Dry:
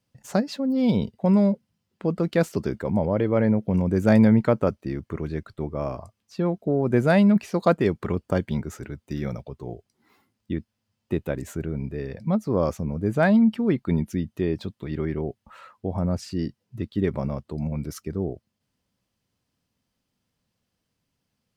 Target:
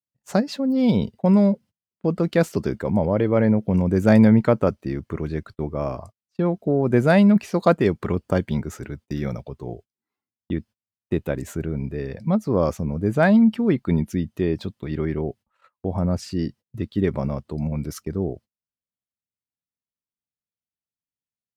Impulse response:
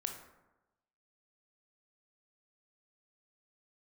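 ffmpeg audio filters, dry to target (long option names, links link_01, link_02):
-af "agate=range=-29dB:threshold=-43dB:ratio=16:detection=peak,volume=2.5dB"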